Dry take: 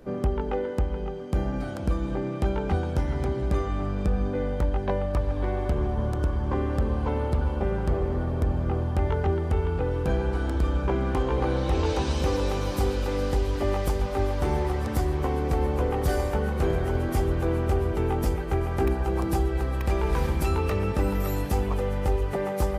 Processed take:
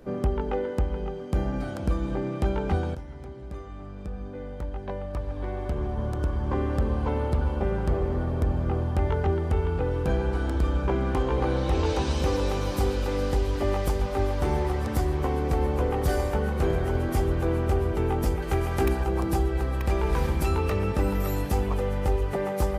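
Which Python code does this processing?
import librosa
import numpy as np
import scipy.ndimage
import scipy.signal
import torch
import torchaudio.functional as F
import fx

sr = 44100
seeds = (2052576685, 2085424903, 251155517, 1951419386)

y = fx.high_shelf(x, sr, hz=2200.0, db=8.0, at=(18.42, 19.04))
y = fx.edit(y, sr, fx.fade_in_from(start_s=2.95, length_s=3.67, curve='qua', floor_db=-13.5), tone=tone)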